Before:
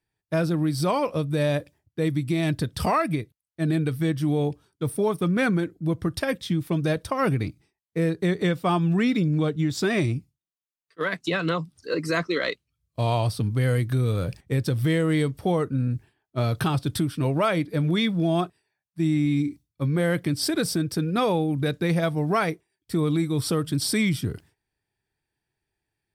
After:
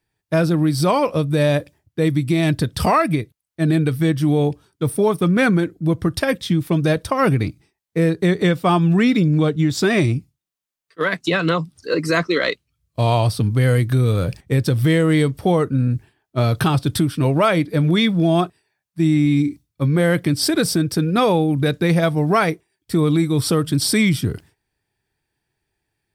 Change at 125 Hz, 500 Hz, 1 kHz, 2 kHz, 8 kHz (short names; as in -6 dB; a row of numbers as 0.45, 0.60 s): +6.5, +6.5, +6.5, +6.5, +6.5 dB